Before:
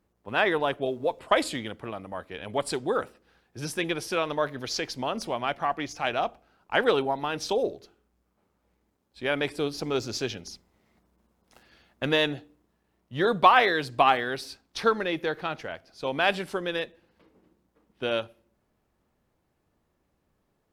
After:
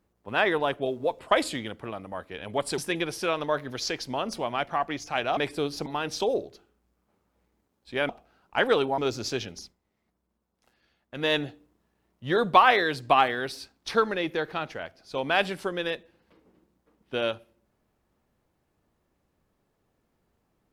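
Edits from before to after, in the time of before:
2.78–3.67 cut
6.26–7.15 swap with 9.38–9.87
10.48–12.23 dip -10.5 dB, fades 0.19 s

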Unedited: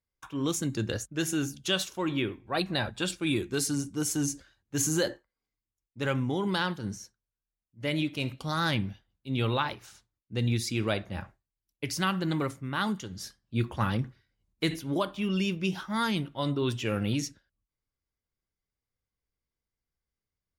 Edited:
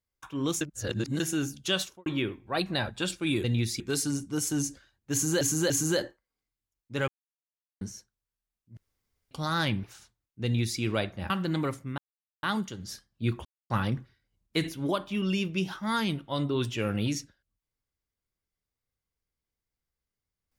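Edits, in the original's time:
0.61–1.2 reverse
1.81–2.06 studio fade out
4.76–5.05 loop, 3 plays
6.14–6.87 mute
7.83–8.37 room tone
8.9–9.77 cut
10.37–10.73 copy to 3.44
11.23–12.07 cut
12.75 insert silence 0.45 s
13.77 insert silence 0.25 s

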